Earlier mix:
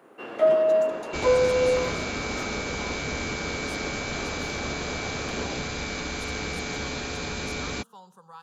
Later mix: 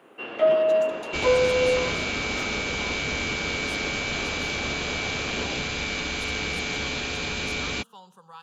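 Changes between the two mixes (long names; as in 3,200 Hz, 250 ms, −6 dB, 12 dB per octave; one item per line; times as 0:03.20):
first sound: add high-frequency loss of the air 80 metres
master: add parametric band 2,900 Hz +9.5 dB 0.74 octaves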